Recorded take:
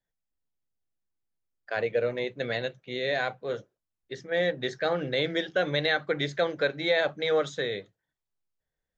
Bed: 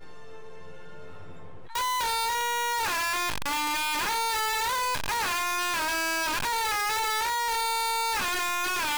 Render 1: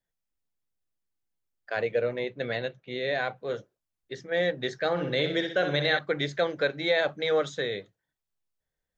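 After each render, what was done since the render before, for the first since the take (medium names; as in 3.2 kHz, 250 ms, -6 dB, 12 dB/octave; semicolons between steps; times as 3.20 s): 2.01–3.36 s: distance through air 90 m; 4.90–5.99 s: flutter echo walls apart 10.8 m, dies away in 0.52 s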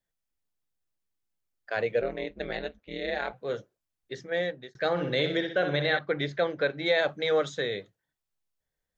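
2.01–3.33 s: ring modulator 82 Hz; 4.27–4.75 s: fade out; 5.37–6.86 s: distance through air 130 m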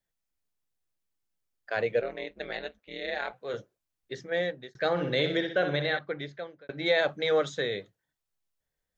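2.00–3.54 s: bass shelf 360 Hz -10 dB; 5.61–6.69 s: fade out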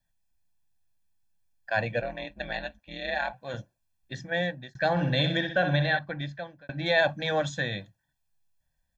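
bass shelf 220 Hz +6.5 dB; comb 1.2 ms, depth 92%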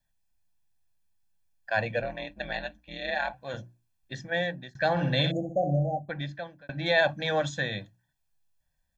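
hum notches 60/120/180/240/300/360 Hz; 5.31–6.09 s: spectral selection erased 800–6200 Hz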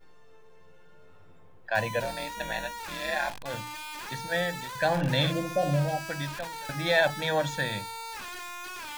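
add bed -11.5 dB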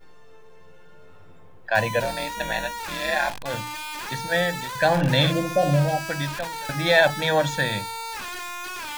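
trim +6 dB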